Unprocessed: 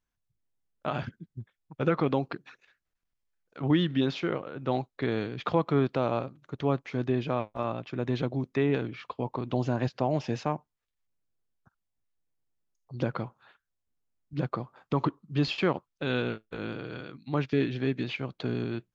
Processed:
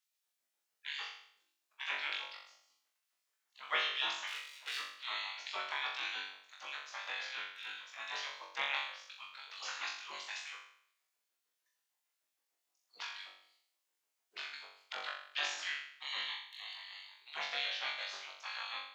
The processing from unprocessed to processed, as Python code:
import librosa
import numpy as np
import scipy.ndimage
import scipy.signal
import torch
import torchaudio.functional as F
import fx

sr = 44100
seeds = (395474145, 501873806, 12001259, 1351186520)

y = fx.lower_of_two(x, sr, delay_ms=1.1, at=(4.27, 4.95))
y = fx.spec_gate(y, sr, threshold_db=-25, keep='weak')
y = fx.filter_lfo_highpass(y, sr, shape='sine', hz=6.6, low_hz=510.0, high_hz=3300.0, q=0.83)
y = fx.room_flutter(y, sr, wall_m=3.6, rt60_s=0.62)
y = y * 10.0 ** (5.0 / 20.0)